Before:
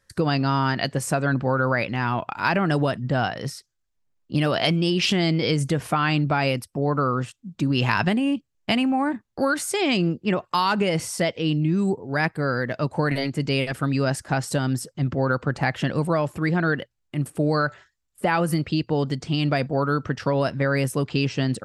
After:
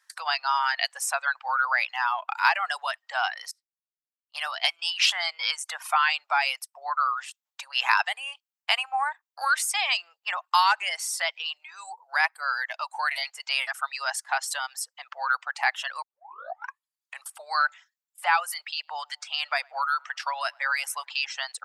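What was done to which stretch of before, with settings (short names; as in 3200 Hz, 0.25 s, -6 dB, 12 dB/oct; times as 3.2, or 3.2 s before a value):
3.51–4.79 upward expander 2.5:1, over -35 dBFS
16.02 tape start 1.25 s
18.57–21.12 tape echo 0.105 s, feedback 57%, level -17 dB
whole clip: steep high-pass 780 Hz 48 dB/oct; reverb removal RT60 0.9 s; gain +2.5 dB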